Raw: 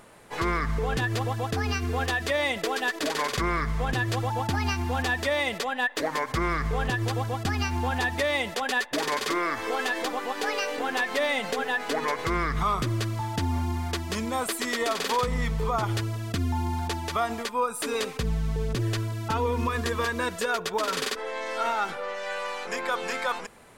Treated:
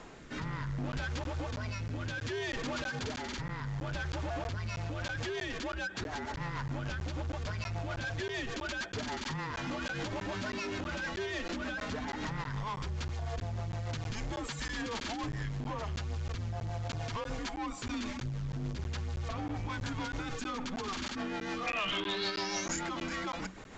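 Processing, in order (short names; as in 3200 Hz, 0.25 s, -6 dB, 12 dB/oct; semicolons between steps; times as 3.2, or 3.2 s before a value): limiter -27.5 dBFS, peak gain reduction 11.5 dB; rotary speaker horn 0.65 Hz, later 6.7 Hz, at 4.36; soft clip -39 dBFS, distortion -10 dB; 21.66–22.8 synth low-pass 2500 Hz -> 7500 Hz, resonance Q 11; frequency shift -190 Hz; wavefolder -32.5 dBFS; crackling interface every 0.32 s, samples 512, zero, from 0.92; gain +6 dB; A-law 128 kbps 16000 Hz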